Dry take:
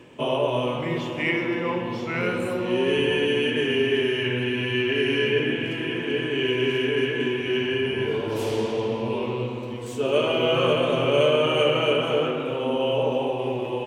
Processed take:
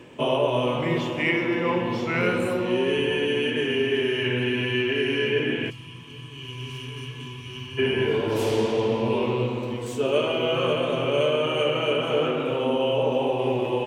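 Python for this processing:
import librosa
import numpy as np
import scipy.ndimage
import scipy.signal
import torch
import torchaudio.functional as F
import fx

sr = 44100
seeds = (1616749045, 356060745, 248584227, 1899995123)

y = fx.curve_eq(x, sr, hz=(110.0, 360.0, 710.0, 1100.0, 1600.0, 4400.0), db=(0, -24, -23, -3, -24, -1), at=(5.69, 7.77), fade=0.02)
y = fx.rider(y, sr, range_db=3, speed_s=0.5)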